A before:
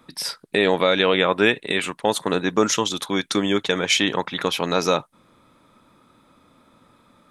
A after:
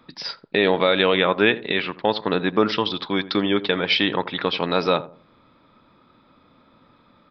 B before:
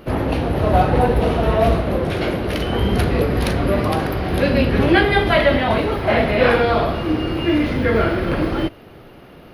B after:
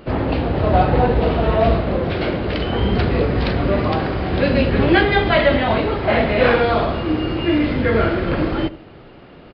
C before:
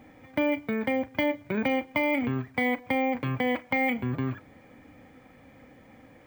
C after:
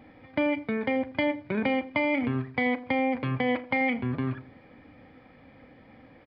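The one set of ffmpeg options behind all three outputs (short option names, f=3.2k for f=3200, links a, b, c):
-filter_complex "[0:a]asplit=2[a][b];[b]adelay=84,lowpass=f=830:p=1,volume=-14dB,asplit=2[c][d];[d]adelay=84,lowpass=f=830:p=1,volume=0.34,asplit=2[e][f];[f]adelay=84,lowpass=f=830:p=1,volume=0.34[g];[c][e][g]amix=inputs=3:normalize=0[h];[a][h]amix=inputs=2:normalize=0,aresample=11025,aresample=44100"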